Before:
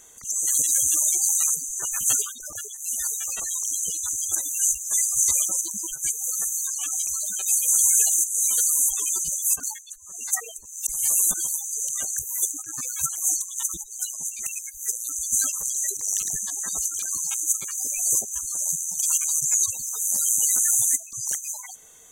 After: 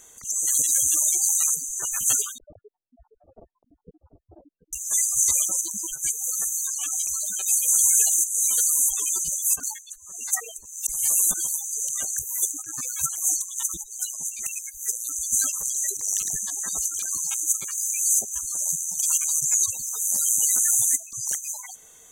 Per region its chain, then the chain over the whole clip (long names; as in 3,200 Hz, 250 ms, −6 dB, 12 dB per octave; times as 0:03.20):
0:02.38–0:04.73: Chebyshev low-pass filter 680 Hz, order 4 + single-tap delay 737 ms −13.5 dB
0:17.72–0:18.19: linear-phase brick-wall high-pass 2,200 Hz + comb filter 2.6 ms, depth 55%
whole clip: no processing